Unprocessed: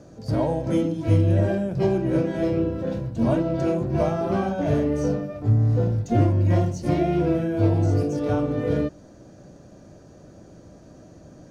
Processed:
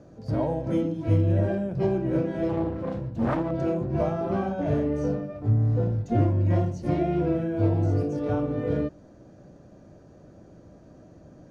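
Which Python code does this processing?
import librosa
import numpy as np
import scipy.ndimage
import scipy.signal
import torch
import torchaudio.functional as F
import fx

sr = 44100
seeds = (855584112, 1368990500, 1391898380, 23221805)

y = fx.self_delay(x, sr, depth_ms=0.66, at=(2.49, 3.51))
y = fx.high_shelf(y, sr, hz=3900.0, db=-11.0)
y = y * librosa.db_to_amplitude(-3.0)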